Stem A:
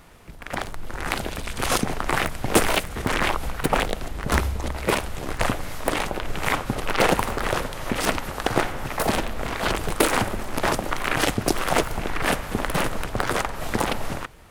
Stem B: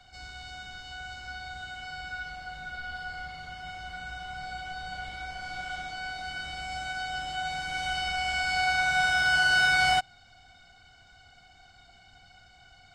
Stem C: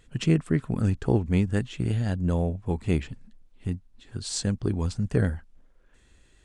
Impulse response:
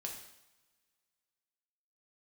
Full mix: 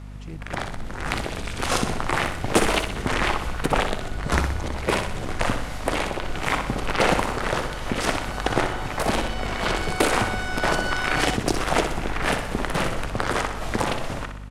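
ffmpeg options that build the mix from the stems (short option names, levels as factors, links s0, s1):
-filter_complex "[0:a]lowpass=9200,volume=0.891,asplit=2[s0][s1];[s1]volume=0.422[s2];[1:a]adelay=1350,volume=0.447[s3];[2:a]volume=0.126[s4];[s2]aecho=0:1:62|124|186|248|310|372|434|496:1|0.53|0.281|0.149|0.0789|0.0418|0.0222|0.0117[s5];[s0][s3][s4][s5]amix=inputs=4:normalize=0,aeval=exprs='val(0)+0.0158*(sin(2*PI*50*n/s)+sin(2*PI*2*50*n/s)/2+sin(2*PI*3*50*n/s)/3+sin(2*PI*4*50*n/s)/4+sin(2*PI*5*50*n/s)/5)':c=same"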